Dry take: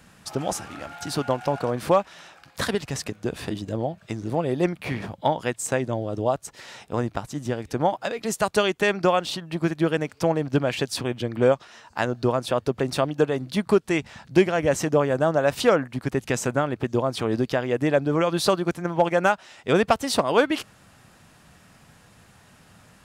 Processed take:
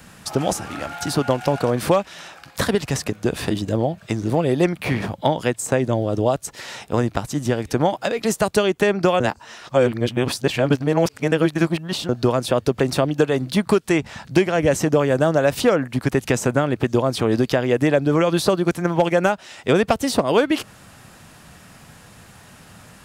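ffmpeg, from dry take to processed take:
-filter_complex "[0:a]asplit=3[s0][s1][s2];[s0]atrim=end=9.202[s3];[s1]atrim=start=9.198:end=12.092,asetpts=PTS-STARTPTS,areverse[s4];[s2]atrim=start=12.088[s5];[s3][s4]acrossfade=d=0.004:c1=hsin:c2=hsin[s6];[s6][s5]acrossfade=d=0.004:c1=hsin:c2=hsin,highshelf=f=9900:g=4.5,acrossover=split=650|1500[s7][s8][s9];[s7]acompressor=threshold=0.0794:ratio=4[s10];[s8]acompressor=threshold=0.0158:ratio=4[s11];[s9]acompressor=threshold=0.02:ratio=4[s12];[s10][s11][s12]amix=inputs=3:normalize=0,volume=2.37"

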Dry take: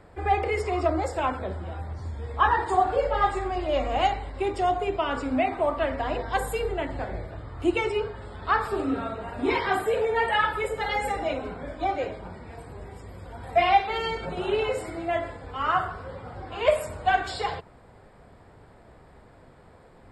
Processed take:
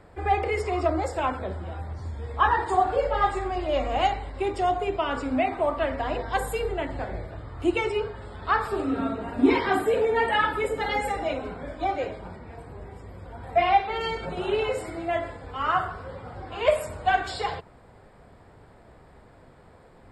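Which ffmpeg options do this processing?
-filter_complex "[0:a]asettb=1/sr,asplit=3[s0][s1][s2];[s0]atrim=end=8.994[s3];[s1]atrim=start=8.99:end=11.01,asetpts=PTS-STARTPTS,afade=t=in:d=0.004:c=qsin,afade=t=out:st=2.016:d=0.004:c=qsin,equalizer=f=270:w=2.1:g=11[s4];[s2]atrim=start=11.006[s5];[s3][s4]acrossfade=d=0.004:c1=hsin:c2=qsin[s6];[s6][s5]acrossfade=d=0.004:c1=qsin:c2=hsin,asettb=1/sr,asplit=3[s7][s8][s9];[s7]atrim=end=12.364[s10];[s8]atrim=start=12.36:end=14.01,asetpts=PTS-STARTPTS,afade=t=in:d=0.004:c=qsin,afade=t=out:st=1.646:d=0.004:c=qsin,highshelf=f=3500:g=-7.5[s11];[s9]atrim=start=14.006[s12];[s10][s11]acrossfade=d=0.004:c1=hsin:c2=qsin[s13];[s13][s12]acrossfade=d=0.004:c1=qsin:c2=hsin"

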